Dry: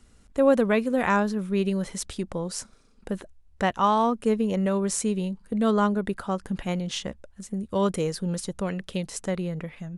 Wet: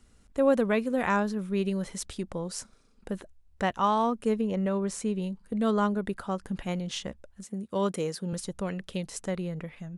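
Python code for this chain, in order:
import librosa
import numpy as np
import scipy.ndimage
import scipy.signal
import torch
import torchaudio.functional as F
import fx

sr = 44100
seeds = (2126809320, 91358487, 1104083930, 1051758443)

y = fx.high_shelf(x, sr, hz=4500.0, db=-8.5, at=(4.41, 5.22))
y = fx.highpass(y, sr, hz=150.0, slope=12, at=(7.44, 8.33))
y = y * librosa.db_to_amplitude(-3.5)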